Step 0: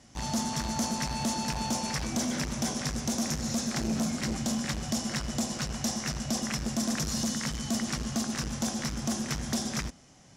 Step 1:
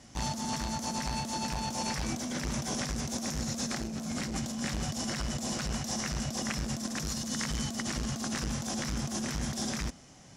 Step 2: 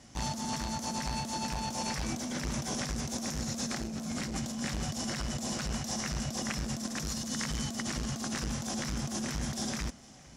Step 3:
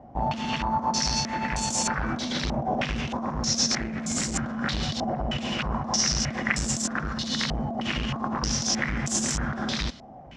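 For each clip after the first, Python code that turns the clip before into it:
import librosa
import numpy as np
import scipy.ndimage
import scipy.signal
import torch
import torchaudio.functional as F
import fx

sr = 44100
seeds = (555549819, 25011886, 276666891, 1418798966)

y1 = fx.over_compress(x, sr, threshold_db=-34.0, ratio=-1.0)
y2 = y1 + 10.0 ** (-22.5 / 20.0) * np.pad(y1, (int(457 * sr / 1000.0), 0))[:len(y1)]
y2 = y2 * librosa.db_to_amplitude(-1.0)
y3 = fx.filter_held_lowpass(y2, sr, hz=3.2, low_hz=740.0, high_hz=7700.0)
y3 = y3 * librosa.db_to_amplitude(5.5)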